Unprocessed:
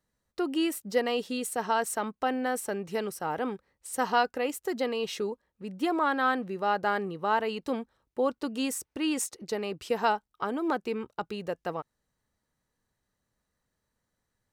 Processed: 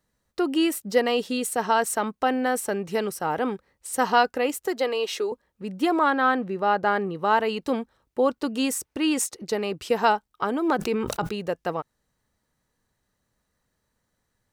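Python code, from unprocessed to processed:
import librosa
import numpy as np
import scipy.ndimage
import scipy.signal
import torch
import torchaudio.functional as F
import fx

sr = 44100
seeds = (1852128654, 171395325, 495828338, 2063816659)

y = fx.highpass(x, sr, hz=310.0, slope=24, at=(4.67, 5.32))
y = fx.high_shelf(y, sr, hz=4200.0, db=-9.0, at=(6.1, 7.15))
y = fx.sustainer(y, sr, db_per_s=34.0, at=(10.78, 11.3), fade=0.02)
y = y * 10.0 ** (5.5 / 20.0)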